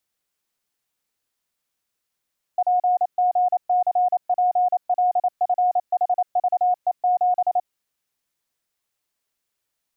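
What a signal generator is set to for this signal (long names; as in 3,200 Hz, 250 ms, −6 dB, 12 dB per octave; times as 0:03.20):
Morse code "PGCPLFHVE7" 28 words per minute 724 Hz −15.5 dBFS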